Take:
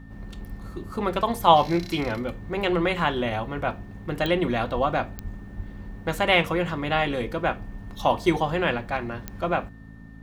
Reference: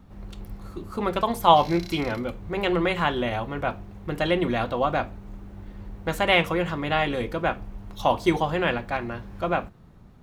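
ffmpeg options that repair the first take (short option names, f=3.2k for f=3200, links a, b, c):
-filter_complex "[0:a]adeclick=t=4,bandreject=f=54.6:t=h:w=4,bandreject=f=109.2:t=h:w=4,bandreject=f=163.8:t=h:w=4,bandreject=f=218.4:t=h:w=4,bandreject=f=273:t=h:w=4,bandreject=f=1.8k:w=30,asplit=3[a][b][c];[a]afade=t=out:st=4.74:d=0.02[d];[b]highpass=f=140:w=0.5412,highpass=f=140:w=1.3066,afade=t=in:st=4.74:d=0.02,afade=t=out:st=4.86:d=0.02[e];[c]afade=t=in:st=4.86:d=0.02[f];[d][e][f]amix=inputs=3:normalize=0,asplit=3[g][h][i];[g]afade=t=out:st=5.23:d=0.02[j];[h]highpass=f=140:w=0.5412,highpass=f=140:w=1.3066,afade=t=in:st=5.23:d=0.02,afade=t=out:st=5.35:d=0.02[k];[i]afade=t=in:st=5.35:d=0.02[l];[j][k][l]amix=inputs=3:normalize=0,asplit=3[m][n][o];[m]afade=t=out:st=5.56:d=0.02[p];[n]highpass=f=140:w=0.5412,highpass=f=140:w=1.3066,afade=t=in:st=5.56:d=0.02,afade=t=out:st=5.68:d=0.02[q];[o]afade=t=in:st=5.68:d=0.02[r];[p][q][r]amix=inputs=3:normalize=0"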